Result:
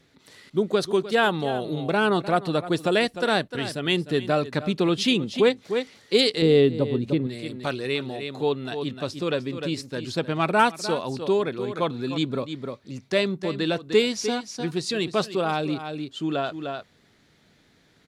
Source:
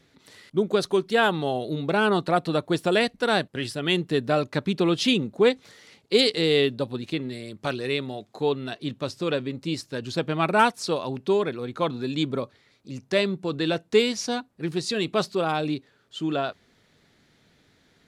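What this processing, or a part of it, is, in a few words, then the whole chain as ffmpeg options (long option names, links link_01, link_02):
ducked delay: -filter_complex "[0:a]asplit=3[link_01][link_02][link_03];[link_02]adelay=303,volume=-5dB[link_04];[link_03]apad=whole_len=810450[link_05];[link_04][link_05]sidechaincompress=threshold=-33dB:ratio=8:attack=25:release=239[link_06];[link_01][link_06]amix=inputs=2:normalize=0,asettb=1/sr,asplit=3[link_07][link_08][link_09];[link_07]atrim=end=6.424[link_10];[link_08]atrim=start=6.42:end=7.27,asetpts=PTS-STARTPTS,afade=type=in:duration=0.004:curve=qsin,afade=type=out:start_time=0.846:duration=0.004:curve=qsin,tiltshelf=frequency=830:gain=7[link_11];[link_09]atrim=start=7.266[link_12];[link_10][link_11]acrossfade=duration=0.004:curve1=hsin:curve2=qsin[link_13];[link_13][link_12]acrossfade=duration=0.004:curve1=qsin:curve2=hsin"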